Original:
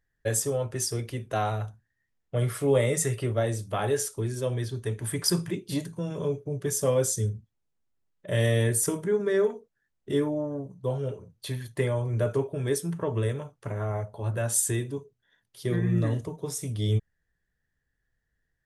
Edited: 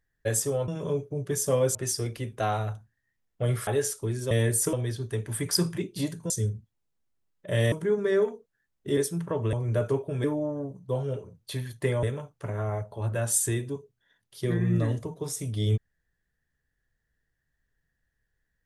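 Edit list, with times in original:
2.6–3.82 cut
6.03–7.1 move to 0.68
8.52–8.94 move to 4.46
10.19–11.98 swap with 12.69–13.25

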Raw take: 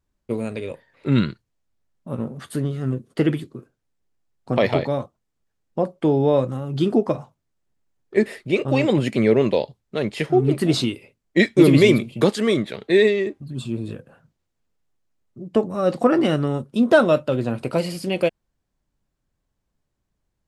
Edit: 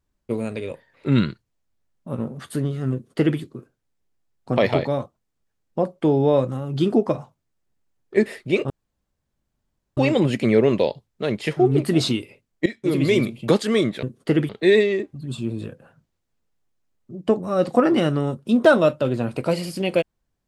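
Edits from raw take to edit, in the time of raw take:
2.93–3.39 copy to 12.76
8.7 insert room tone 1.27 s
11.39–12.26 fade in, from -18.5 dB

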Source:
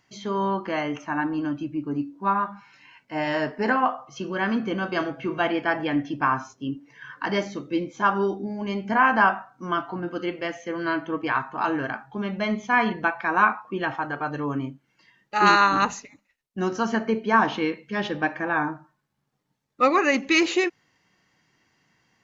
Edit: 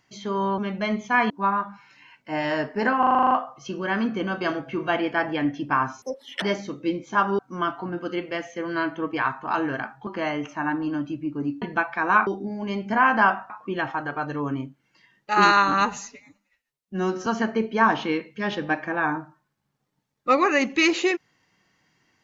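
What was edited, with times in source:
0.58–2.13 swap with 12.17–12.89
3.82 stutter 0.04 s, 9 plays
6.53–7.29 speed 191%
8.26–9.49 move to 13.54
15.76–16.79 stretch 1.5×

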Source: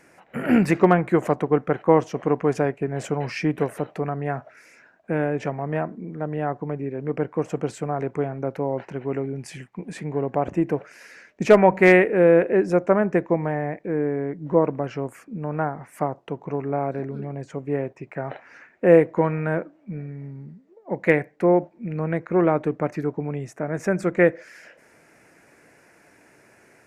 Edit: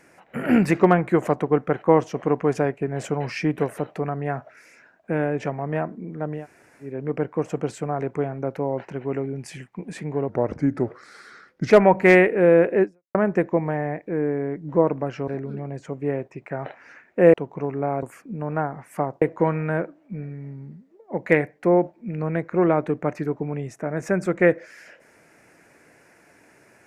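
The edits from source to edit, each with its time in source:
6.39–6.87 room tone, crossfade 0.16 s
10.29–11.48 speed 84%
12.61–12.92 fade out exponential
15.05–16.24 swap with 16.93–18.99

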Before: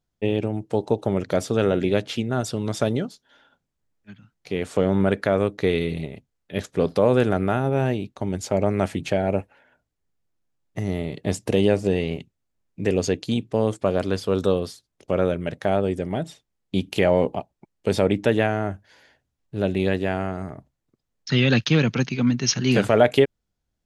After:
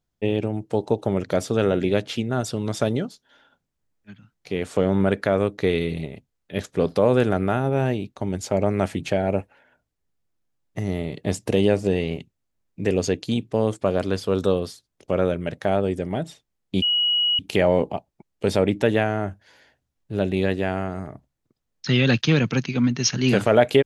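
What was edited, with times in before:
16.82 add tone 2910 Hz -17.5 dBFS 0.57 s

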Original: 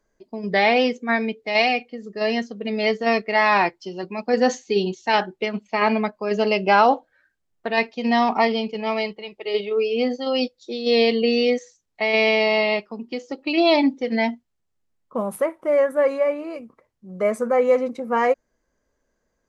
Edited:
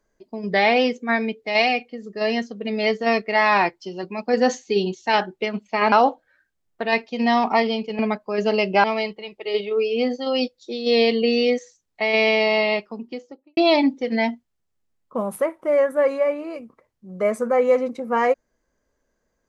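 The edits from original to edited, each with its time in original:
5.92–6.77 move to 8.84
12.92–13.57 studio fade out

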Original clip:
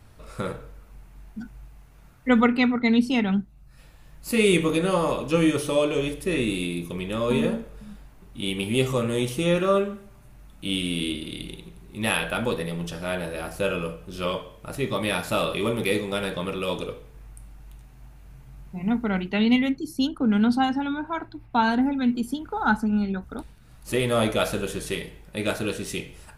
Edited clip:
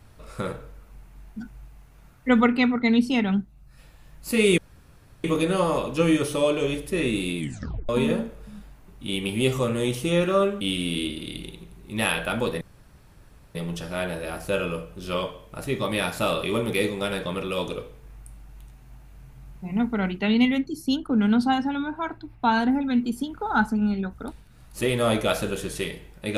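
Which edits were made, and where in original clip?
4.58 insert room tone 0.66 s
6.72 tape stop 0.51 s
9.95–10.66 cut
12.66 insert room tone 0.94 s

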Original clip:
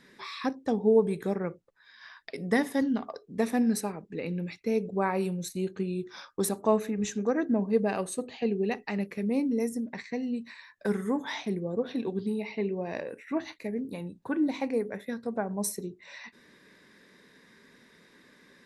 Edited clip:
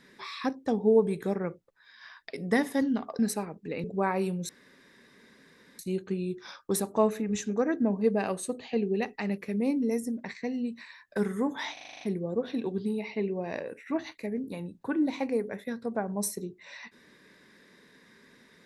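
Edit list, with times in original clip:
3.19–3.66 cut
4.31–4.83 cut
5.48 insert room tone 1.30 s
11.42 stutter 0.04 s, 8 plays

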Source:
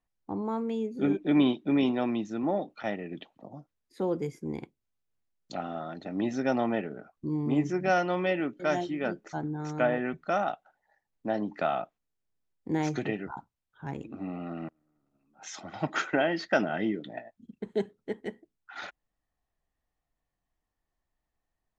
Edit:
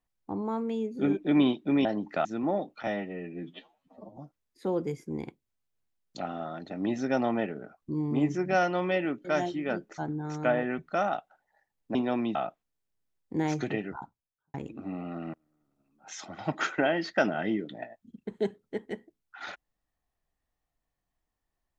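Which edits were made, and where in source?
1.85–2.25 swap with 11.3–11.7
2.87–3.52 stretch 2×
13.26–13.89 studio fade out

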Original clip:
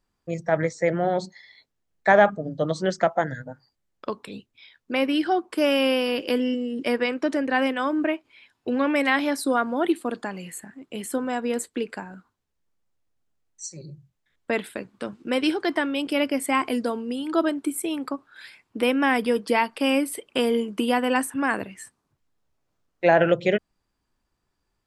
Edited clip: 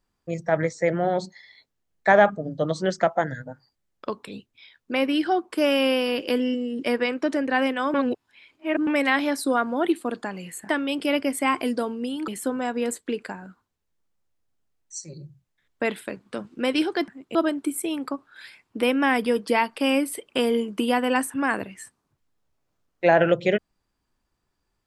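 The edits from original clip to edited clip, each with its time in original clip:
7.94–8.87 reverse
10.69–10.96 swap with 15.76–17.35

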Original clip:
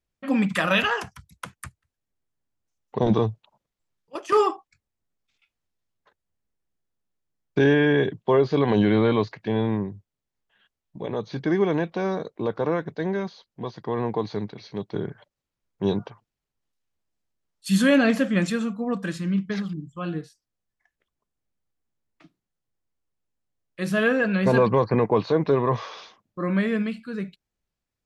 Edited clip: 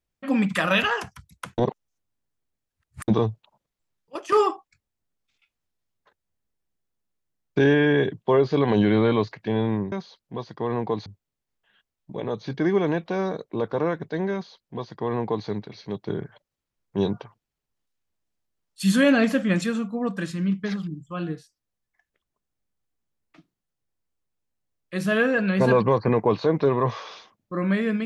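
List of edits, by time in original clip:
1.58–3.08 reverse
13.19–14.33 copy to 9.92

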